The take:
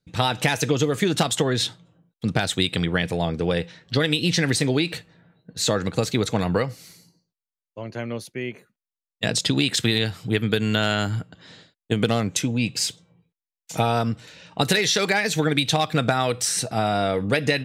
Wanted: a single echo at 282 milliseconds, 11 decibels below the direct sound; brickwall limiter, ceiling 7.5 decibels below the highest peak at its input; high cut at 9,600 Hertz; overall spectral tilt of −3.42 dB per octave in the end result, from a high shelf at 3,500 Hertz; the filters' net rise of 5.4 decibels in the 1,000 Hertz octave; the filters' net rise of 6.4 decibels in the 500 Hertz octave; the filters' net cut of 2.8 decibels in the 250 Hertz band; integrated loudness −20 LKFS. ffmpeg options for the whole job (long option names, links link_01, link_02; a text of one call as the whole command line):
ffmpeg -i in.wav -af "lowpass=9600,equalizer=frequency=250:width_type=o:gain=-7,equalizer=frequency=500:width_type=o:gain=8.5,equalizer=frequency=1000:width_type=o:gain=4,highshelf=frequency=3500:gain=4,alimiter=limit=-8.5dB:level=0:latency=1,aecho=1:1:282:0.282,volume=1.5dB" out.wav